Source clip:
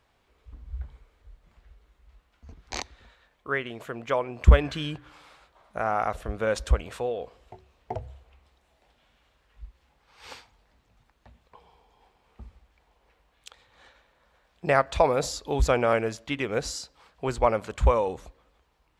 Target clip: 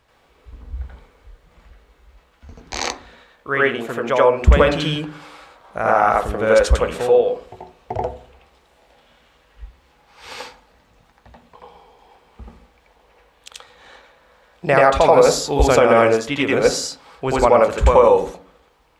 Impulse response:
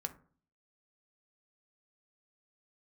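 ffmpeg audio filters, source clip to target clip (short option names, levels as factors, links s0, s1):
-filter_complex "[0:a]asplit=2[s0][s1];[s1]highpass=400[s2];[1:a]atrim=start_sample=2205,lowshelf=f=350:g=11,adelay=84[s3];[s2][s3]afir=irnorm=-1:irlink=0,volume=1.68[s4];[s0][s4]amix=inputs=2:normalize=0,alimiter=level_in=2.24:limit=0.891:release=50:level=0:latency=1,volume=0.891"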